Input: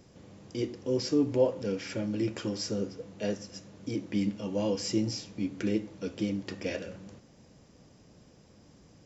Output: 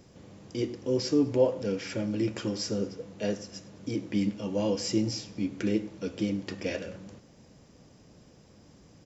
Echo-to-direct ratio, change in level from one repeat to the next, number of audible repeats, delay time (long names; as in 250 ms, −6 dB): −20.0 dB, −6.5 dB, 2, 103 ms